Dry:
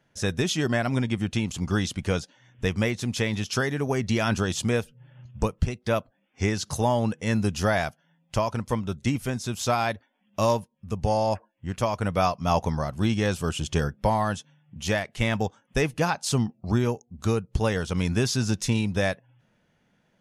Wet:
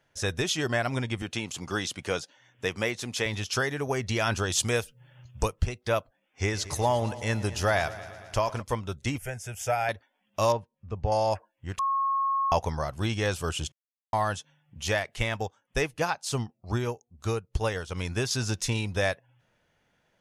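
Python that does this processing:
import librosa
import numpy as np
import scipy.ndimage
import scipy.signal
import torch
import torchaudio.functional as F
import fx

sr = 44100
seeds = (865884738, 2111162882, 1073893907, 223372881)

y = fx.highpass(x, sr, hz=160.0, slope=12, at=(1.22, 3.26))
y = fx.high_shelf(y, sr, hz=3500.0, db=7.5, at=(4.52, 5.53))
y = fx.echo_heads(y, sr, ms=114, heads='first and second', feedback_pct=60, wet_db=-19.5, at=(6.51, 8.61), fade=0.02)
y = fx.fixed_phaser(y, sr, hz=1100.0, stages=6, at=(9.18, 9.89))
y = fx.spacing_loss(y, sr, db_at_10k=27, at=(10.52, 11.12))
y = fx.upward_expand(y, sr, threshold_db=-33.0, expansion=1.5, at=(15.22, 18.31))
y = fx.edit(y, sr, fx.bleep(start_s=11.79, length_s=0.73, hz=1090.0, db=-23.0),
    fx.silence(start_s=13.72, length_s=0.41), tone=tone)
y = fx.peak_eq(y, sr, hz=200.0, db=-10.0, octaves=1.2)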